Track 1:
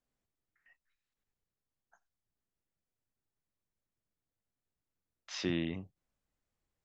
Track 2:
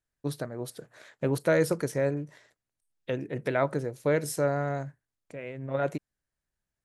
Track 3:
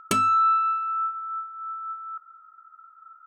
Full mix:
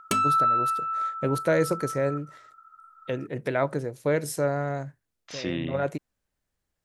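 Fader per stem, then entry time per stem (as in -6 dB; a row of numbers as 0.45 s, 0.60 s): +3.0 dB, +1.0 dB, -2.0 dB; 0.00 s, 0.00 s, 0.00 s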